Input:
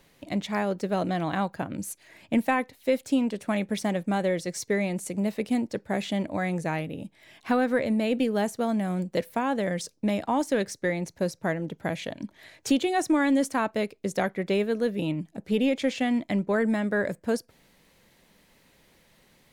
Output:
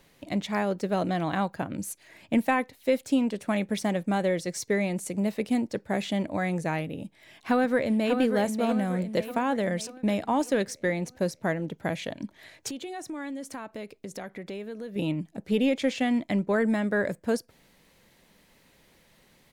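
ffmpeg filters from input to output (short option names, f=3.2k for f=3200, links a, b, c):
-filter_complex "[0:a]asplit=2[a][b];[b]afade=t=in:st=7.04:d=0.01,afade=t=out:st=8.2:d=0.01,aecho=0:1:590|1180|1770|2360|2950|3540:0.446684|0.223342|0.111671|0.0558354|0.0279177|0.0139589[c];[a][c]amix=inputs=2:normalize=0,asettb=1/sr,asplit=3[d][e][f];[d]atrim=end=12.684[g];[e]atrim=start=12.68:end=14.96,asetpts=PTS-STARTPTS,afade=t=in:d=0.004:c=qsin,afade=t=out:st=2.276:d=0.004:c=qsin,acompressor=threshold=-36dB:ratio=4:attack=3.2:release=140:knee=1:detection=peak[h];[f]atrim=start=14.956[i];[g][h]acrossfade=d=0.004:c1=hsin:c2=qsin[j];[j][i]acrossfade=d=0.004:c1=qsin:c2=hsin"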